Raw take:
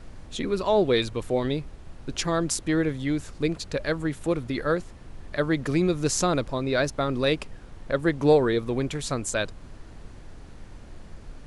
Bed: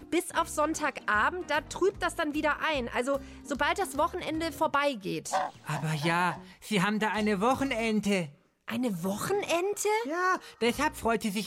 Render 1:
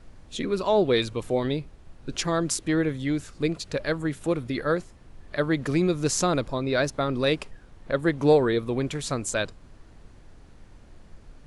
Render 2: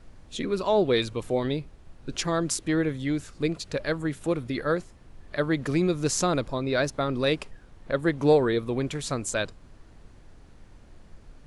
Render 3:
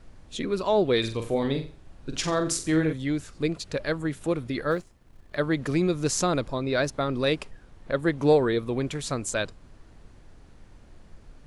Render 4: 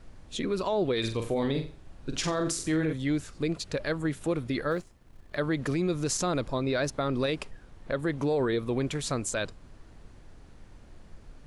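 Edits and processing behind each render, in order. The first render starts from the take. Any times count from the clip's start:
noise print and reduce 6 dB
trim -1 dB
0.99–2.93 s: flutter echo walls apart 7.6 m, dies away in 0.36 s; 4.71–5.35 s: companding laws mixed up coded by A
peak limiter -19.5 dBFS, peak gain reduction 10 dB

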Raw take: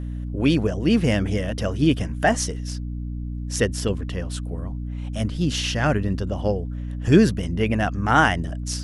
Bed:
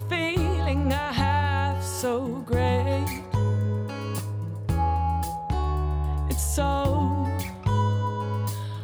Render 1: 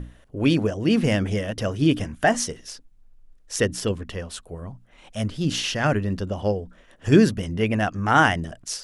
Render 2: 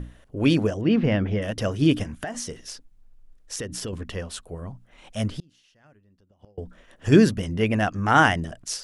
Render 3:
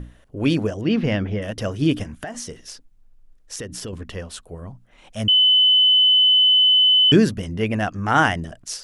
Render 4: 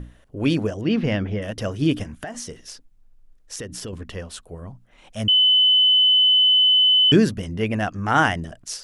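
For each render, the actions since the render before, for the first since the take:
hum notches 60/120/180/240/300 Hz
0.81–1.42 s: distance through air 280 m; 2.03–3.93 s: compression 8:1, threshold -28 dBFS; 5.31–6.58 s: inverted gate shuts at -21 dBFS, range -35 dB
0.78–1.26 s: treble shelf 3.7 kHz +10.5 dB; 5.28–7.12 s: bleep 3.02 kHz -11.5 dBFS
trim -1 dB

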